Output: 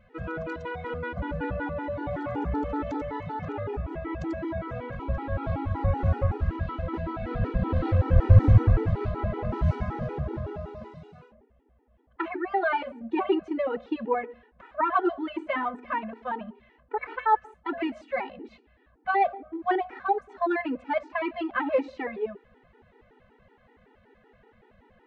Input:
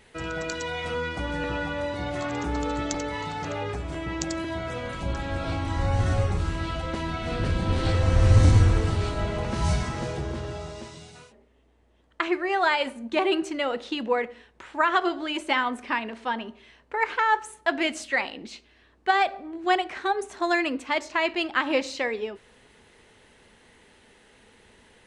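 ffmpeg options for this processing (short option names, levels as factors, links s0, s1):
-af "lowpass=1400,afftfilt=real='re*gt(sin(2*PI*5.3*pts/sr)*(1-2*mod(floor(b*sr/1024/250),2)),0)':imag='im*gt(sin(2*PI*5.3*pts/sr)*(1-2*mod(floor(b*sr/1024/250),2)),0)':win_size=1024:overlap=0.75,volume=1.33"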